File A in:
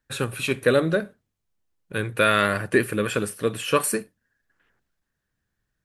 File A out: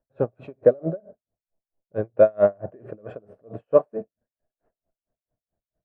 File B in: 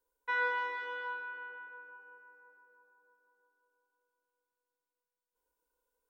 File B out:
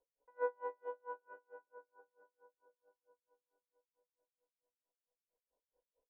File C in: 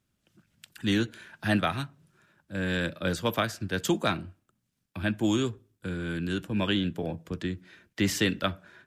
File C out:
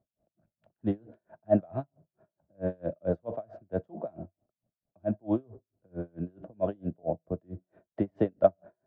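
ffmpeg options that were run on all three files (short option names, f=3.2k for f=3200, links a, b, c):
-af "lowpass=f=650:t=q:w=7.1,aeval=exprs='val(0)*pow(10,-35*(0.5-0.5*cos(2*PI*4.5*n/s))/20)':c=same"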